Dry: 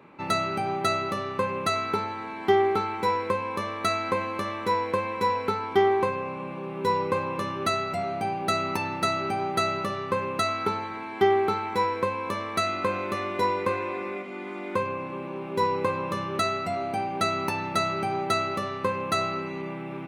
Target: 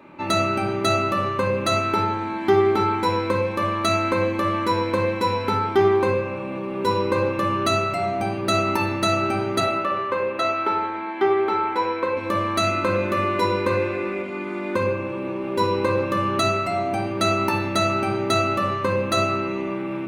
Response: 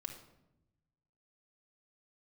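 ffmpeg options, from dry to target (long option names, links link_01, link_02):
-filter_complex "[0:a]asettb=1/sr,asplit=3[link_01][link_02][link_03];[link_01]atrim=end=9.604[link_04];[link_02]atrim=start=9.6:end=12.17,asetpts=PTS-STARTPTS,afade=type=in:duration=0.004:curve=qsin,afade=type=out:start_time=2.566:duration=0.004:curve=qsin,acrossover=split=310 3600:gain=0.141 1 0.2[link_05][link_06][link_07];[link_05][link_06][link_07]amix=inputs=3:normalize=0[link_08];[link_03]atrim=start=12.166[link_09];[link_04][link_08]acrossfade=duration=0.004:curve1=hsin:curve2=qsin[link_10];[link_10][link_09]acrossfade=duration=0.004:curve1=qsin:curve2=hsin[link_11];[1:a]atrim=start_sample=2205[link_12];[link_11][link_12]afir=irnorm=-1:irlink=0,volume=8dB"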